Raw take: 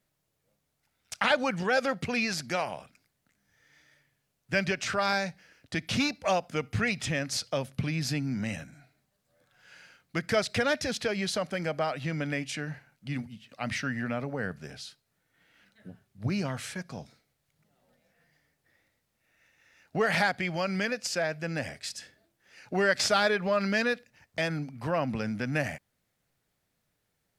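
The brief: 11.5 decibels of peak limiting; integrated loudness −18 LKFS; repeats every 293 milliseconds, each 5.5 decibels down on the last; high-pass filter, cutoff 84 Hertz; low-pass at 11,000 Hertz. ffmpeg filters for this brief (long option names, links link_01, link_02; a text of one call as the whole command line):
ffmpeg -i in.wav -af "highpass=84,lowpass=11000,alimiter=limit=-22.5dB:level=0:latency=1,aecho=1:1:293|586|879|1172|1465|1758|2051:0.531|0.281|0.149|0.079|0.0419|0.0222|0.0118,volume=15dB" out.wav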